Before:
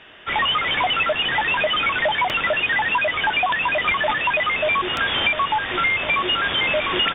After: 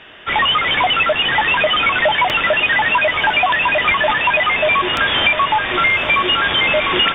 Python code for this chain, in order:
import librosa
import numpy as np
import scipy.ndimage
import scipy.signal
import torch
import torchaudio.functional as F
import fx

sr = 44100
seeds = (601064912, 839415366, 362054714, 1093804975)

y = fx.echo_diffused(x, sr, ms=1049, feedback_pct=41, wet_db=-12.5)
y = y * librosa.db_to_amplitude(5.0)